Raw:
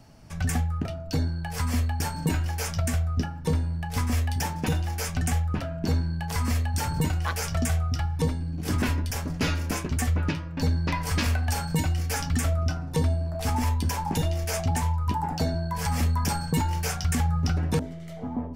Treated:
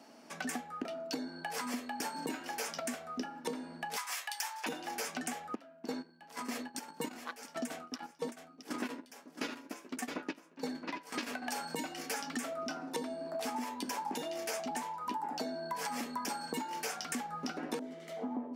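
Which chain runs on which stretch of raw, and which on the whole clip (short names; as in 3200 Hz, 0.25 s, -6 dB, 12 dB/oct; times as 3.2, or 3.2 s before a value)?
3.96–4.66 HPF 830 Hz 24 dB/oct + tilt +1.5 dB/oct
5.55–11.42 gate -25 dBFS, range -19 dB + echo 0.668 s -12 dB
whole clip: Chebyshev high-pass 240 Hz, order 4; high shelf 8600 Hz -4.5 dB; compressor, threshold -36 dBFS; gain +1 dB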